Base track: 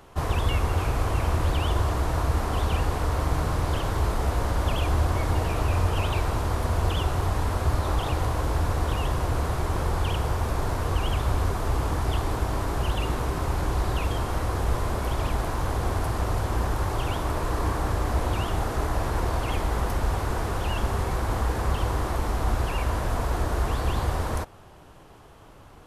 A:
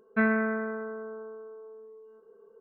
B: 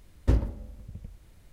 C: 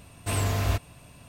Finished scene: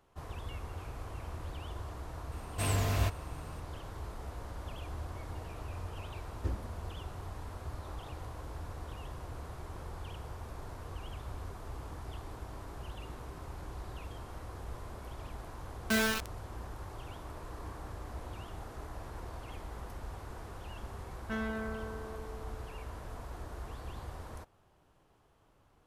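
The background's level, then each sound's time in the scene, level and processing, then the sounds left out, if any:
base track -18 dB
2.32 add C -4.5 dB
6.16 add B -9.5 dB + ensemble effect
15.73 add A -6.5 dB + bit-crush 4-bit
21.13 add A -16 dB + sample leveller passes 2

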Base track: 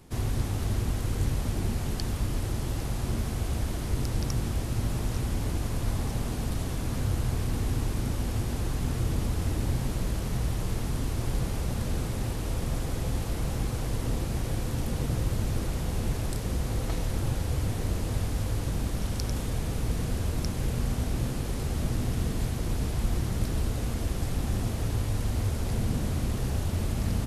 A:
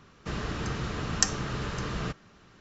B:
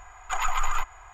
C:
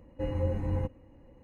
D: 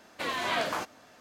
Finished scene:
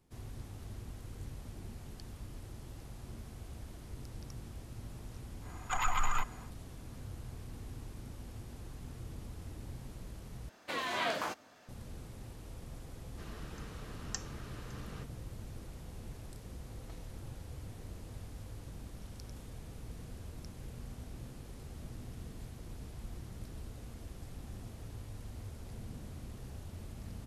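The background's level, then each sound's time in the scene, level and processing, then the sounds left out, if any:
base track -17.5 dB
5.4 add B -5.5 dB, fades 0.10 s
10.49 replace with D -4.5 dB
12.92 add A -16 dB
not used: C

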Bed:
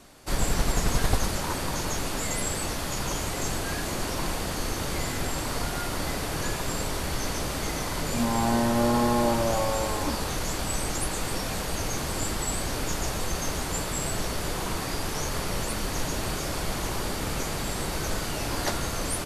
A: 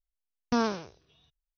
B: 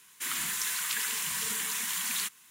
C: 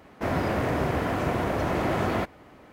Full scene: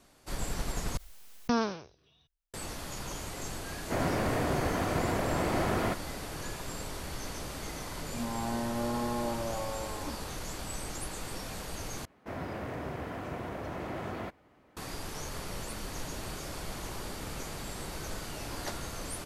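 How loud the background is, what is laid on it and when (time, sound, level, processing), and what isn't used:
bed -9.5 dB
0.97 replace with A -2 dB + backwards sustainer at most 48 dB/s
3.69 add C -4 dB
12.05 replace with C -12 dB
not used: B

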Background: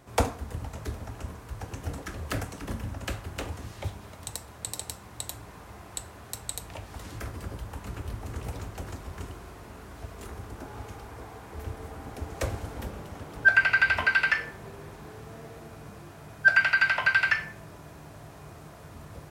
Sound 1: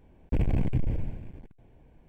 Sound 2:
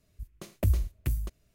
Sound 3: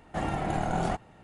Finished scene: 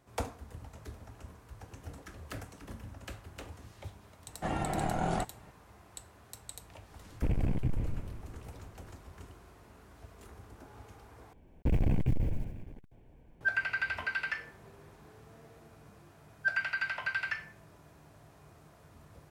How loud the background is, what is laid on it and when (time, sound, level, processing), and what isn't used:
background -11 dB
4.28 add 3 -3 dB
6.9 add 1 -4.5 dB
11.33 replace with 1 -2 dB + block floating point 7-bit
not used: 2

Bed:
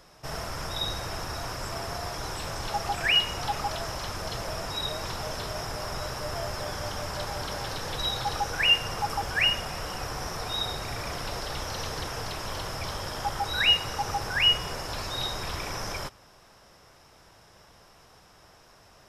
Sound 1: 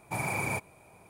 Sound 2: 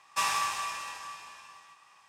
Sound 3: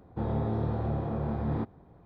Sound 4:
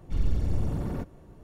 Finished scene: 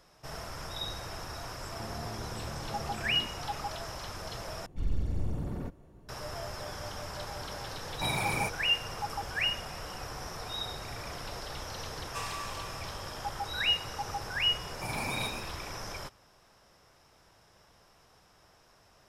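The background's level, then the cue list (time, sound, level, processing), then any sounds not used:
bed -6.5 dB
1.63 add 3 -2 dB + compressor, threshold -37 dBFS
4.66 replace with 4 -5 dB
7.9 add 1 -0.5 dB
11.98 add 2 -10.5 dB
14.7 add 1 -5 dB + frequency-shifting echo 0.122 s, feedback 37%, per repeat +110 Hz, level -6 dB

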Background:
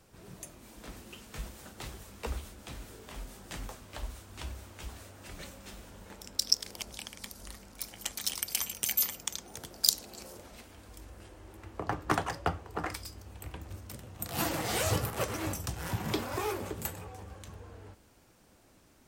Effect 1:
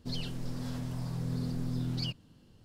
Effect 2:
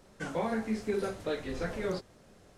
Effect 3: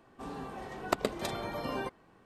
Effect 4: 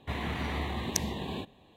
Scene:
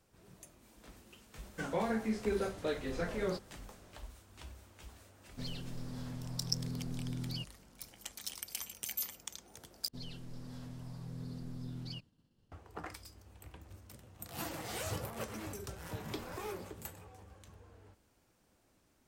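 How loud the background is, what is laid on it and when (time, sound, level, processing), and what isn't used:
background -9.5 dB
1.38 add 2 -2 dB
5.32 add 1 -6 dB
9.88 replace with 1 -10 dB + expander -56 dBFS
14.65 add 2 -17 dB
not used: 3, 4

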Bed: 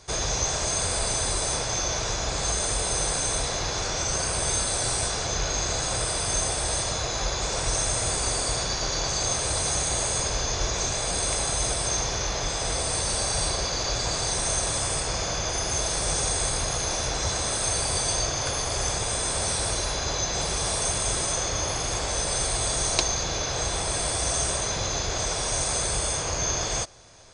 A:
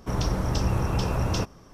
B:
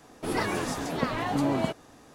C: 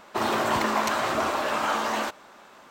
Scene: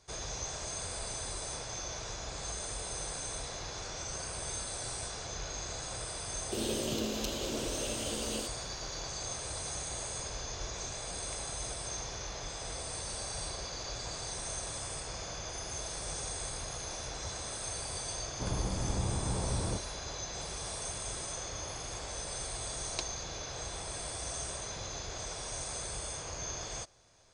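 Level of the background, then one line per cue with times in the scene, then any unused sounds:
bed -13 dB
6.37 add C -4.5 dB + elliptic band-stop 520–2900 Hz
18.33 add A -8.5 dB + LPF 1100 Hz 24 dB/oct
not used: B

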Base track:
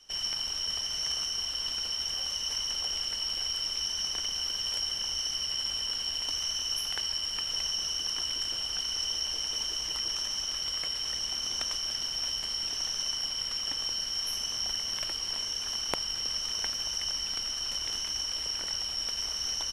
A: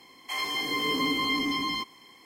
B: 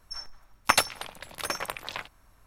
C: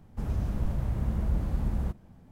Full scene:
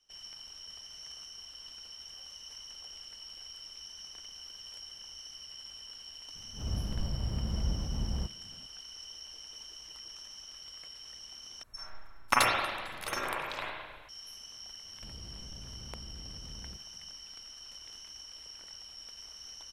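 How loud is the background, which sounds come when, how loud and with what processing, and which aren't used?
base track -15 dB
6.35 add C -4 dB + attack slew limiter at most 130 dB/s
11.63 replace with B -6 dB + spring tank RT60 1.4 s, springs 35/43/51 ms, chirp 65 ms, DRR -4 dB
14.85 add C -13 dB + soft clip -31 dBFS
not used: A

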